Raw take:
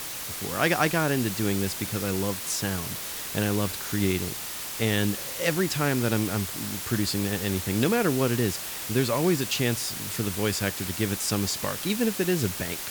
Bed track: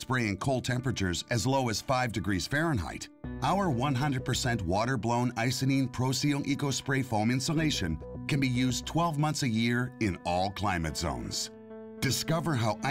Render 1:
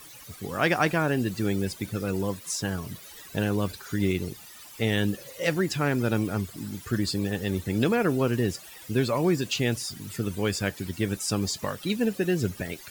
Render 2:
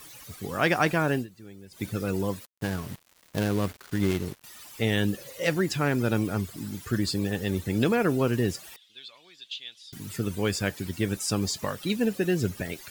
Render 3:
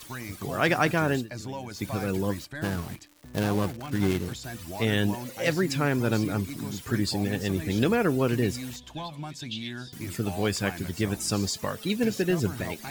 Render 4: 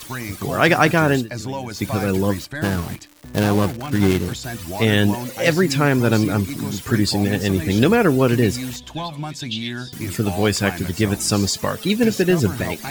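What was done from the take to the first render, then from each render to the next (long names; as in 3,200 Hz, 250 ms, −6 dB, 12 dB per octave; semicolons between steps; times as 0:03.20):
broadband denoise 16 dB, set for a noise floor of −35 dBFS
0:01.15–0:01.83: duck −19.5 dB, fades 0.12 s; 0:02.45–0:04.44: gap after every zero crossing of 0.17 ms; 0:08.76–0:09.93: resonant band-pass 3,500 Hz, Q 6.9
mix in bed track −9.5 dB
level +8.5 dB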